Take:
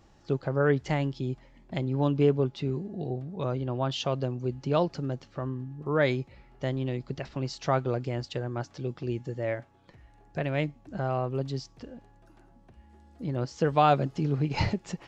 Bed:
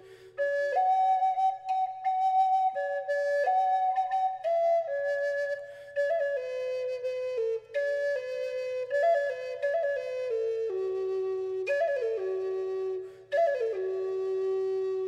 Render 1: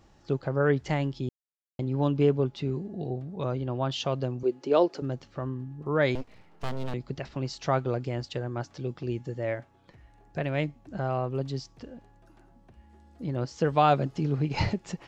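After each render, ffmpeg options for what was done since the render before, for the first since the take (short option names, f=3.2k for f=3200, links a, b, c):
-filter_complex "[0:a]asettb=1/sr,asplit=3[a][b][c];[a]atrim=end=4.434[d];[b]atrim=start=4.43:end=5.02,asetpts=PTS-STARTPTS,afade=t=in:d=0.004:c=qsin,afade=t=out:st=0.586:d=0.004:c=qsin,highpass=f=370:t=q:w=2.2[e];[c]atrim=start=5.016[f];[d][e]acrossfade=d=0.004:c1=hsin:c2=qsin[g];[g][f]acrossfade=d=0.004:c1=qsin:c2=hsin,asettb=1/sr,asplit=3[h][i][j];[h]atrim=end=6.154[k];[i]atrim=start=6.15:end=6.94,asetpts=PTS-STARTPTS,afade=t=in:d=0.004:c=qsin,afade=t=out:st=0.786:d=0.004:c=qsin,aeval=exprs='abs(val(0))':c=same[l];[j]atrim=start=6.936[m];[k][l]acrossfade=d=0.004:c1=hsin:c2=qsin[n];[n][m]acrossfade=d=0.004:c1=qsin:c2=hsin,asplit=3[o][p][q];[o]atrim=end=1.29,asetpts=PTS-STARTPTS,afade=t=out:st=1.286:d=0.004:c=hsin[r];[p]atrim=start=1.29:end=1.79,asetpts=PTS-STARTPTS,volume=0[s];[q]atrim=start=1.79,asetpts=PTS-STARTPTS,afade=t=in:d=0.004:c=hsin[t];[r][s][t]concat=n=3:v=0:a=1"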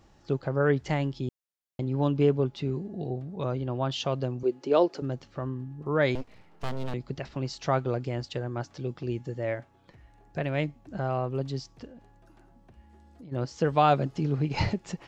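-filter_complex "[0:a]asplit=3[a][b][c];[a]afade=t=out:st=11.86:d=0.02[d];[b]acompressor=threshold=-44dB:ratio=6:attack=3.2:release=140:knee=1:detection=peak,afade=t=in:st=11.86:d=0.02,afade=t=out:st=13.31:d=0.02[e];[c]afade=t=in:st=13.31:d=0.02[f];[d][e][f]amix=inputs=3:normalize=0"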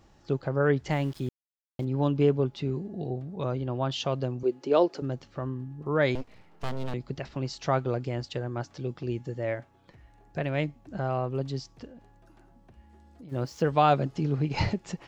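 -filter_complex "[0:a]asettb=1/sr,asplit=3[a][b][c];[a]atrim=end=0.914[d];[b]atrim=start=0.91:end=1.85,asetpts=PTS-STARTPTS,afade=t=in:d=0.004:c=qsin,afade=t=out:st=0.936:d=0.004:c=qsin,aeval=exprs='val(0)*gte(abs(val(0)),0.00531)':c=same[e];[c]atrim=start=1.846[f];[d][e]acrossfade=d=0.004:c1=hsin:c2=qsin[g];[g][f]acrossfade=d=0.004:c1=qsin:c2=hsin,asplit=3[h][i][j];[h]afade=t=out:st=13.28:d=0.02[k];[i]aeval=exprs='val(0)*gte(abs(val(0)),0.00266)':c=same,afade=t=in:st=13.28:d=0.02,afade=t=out:st=13.68:d=0.02[l];[j]afade=t=in:st=13.68:d=0.02[m];[k][l][m]amix=inputs=3:normalize=0"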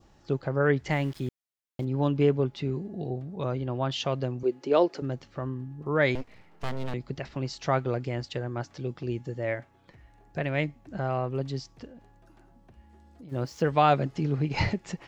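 -af "adynamicequalizer=threshold=0.00447:dfrequency=2000:dqfactor=2.3:tfrequency=2000:tqfactor=2.3:attack=5:release=100:ratio=0.375:range=2.5:mode=boostabove:tftype=bell"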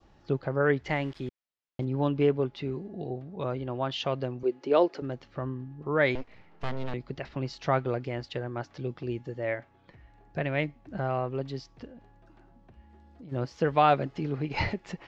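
-af "lowpass=4.3k,adynamicequalizer=threshold=0.00794:dfrequency=140:dqfactor=0.88:tfrequency=140:tqfactor=0.88:attack=5:release=100:ratio=0.375:range=3.5:mode=cutabove:tftype=bell"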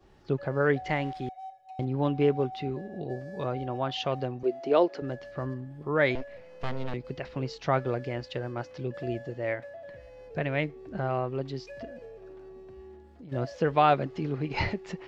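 -filter_complex "[1:a]volume=-16dB[a];[0:a][a]amix=inputs=2:normalize=0"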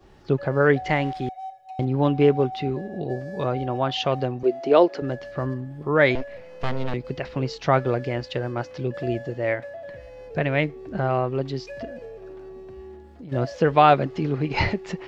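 -af "volume=6.5dB"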